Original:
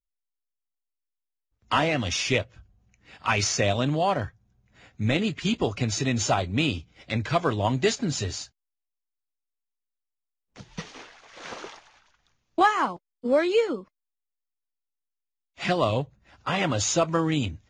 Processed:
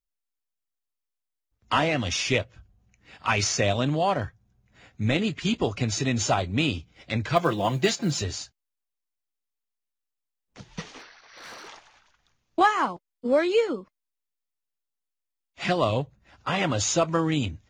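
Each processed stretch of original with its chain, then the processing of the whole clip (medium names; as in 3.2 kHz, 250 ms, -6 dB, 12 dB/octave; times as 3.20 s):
7.36–8.22 s: high-pass 99 Hz + comb 5.8 ms, depth 58% + short-mantissa float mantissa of 4-bit
10.99–11.68 s: rippled Chebyshev low-pass 6 kHz, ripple 6 dB + treble shelf 4.3 kHz +8.5 dB + hard clipper -39 dBFS
whole clip: none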